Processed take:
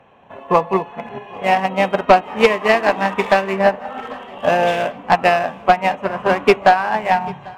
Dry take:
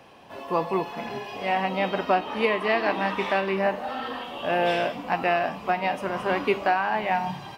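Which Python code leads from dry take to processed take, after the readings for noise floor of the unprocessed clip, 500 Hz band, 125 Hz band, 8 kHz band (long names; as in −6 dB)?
−41 dBFS, +9.0 dB, +7.5 dB, can't be measured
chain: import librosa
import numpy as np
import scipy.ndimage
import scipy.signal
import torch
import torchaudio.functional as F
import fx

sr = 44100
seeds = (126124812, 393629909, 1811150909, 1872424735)

p1 = fx.wiener(x, sr, points=9)
p2 = fx.peak_eq(p1, sr, hz=320.0, db=-8.5, octaves=0.28)
p3 = fx.transient(p2, sr, attack_db=7, sustain_db=0)
p4 = fx.fold_sine(p3, sr, drive_db=11, ceiling_db=0.0)
p5 = p3 + (p4 * librosa.db_to_amplitude(-10.5))
p6 = fx.echo_feedback(p5, sr, ms=794, feedback_pct=49, wet_db=-18.0)
p7 = fx.upward_expand(p6, sr, threshold_db=-27.0, expansion=1.5)
y = p7 * librosa.db_to_amplitude(2.0)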